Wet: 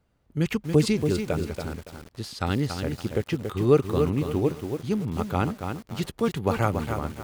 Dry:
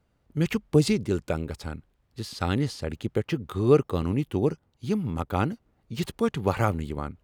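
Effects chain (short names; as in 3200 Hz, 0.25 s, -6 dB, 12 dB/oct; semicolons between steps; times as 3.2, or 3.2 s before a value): lo-fi delay 0.282 s, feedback 35%, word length 7-bit, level -6 dB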